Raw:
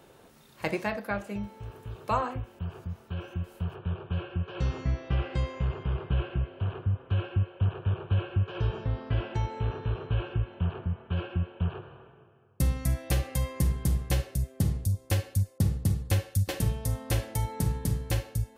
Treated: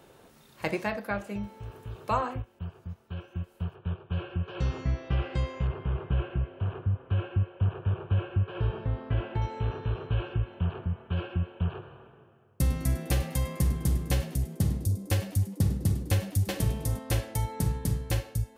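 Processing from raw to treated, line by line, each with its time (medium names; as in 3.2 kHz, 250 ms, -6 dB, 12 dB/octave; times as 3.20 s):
2.42–4.12 s: upward expansion, over -45 dBFS
5.67–9.42 s: boxcar filter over 7 samples
11.91–16.99 s: frequency-shifting echo 102 ms, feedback 47%, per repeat +98 Hz, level -15 dB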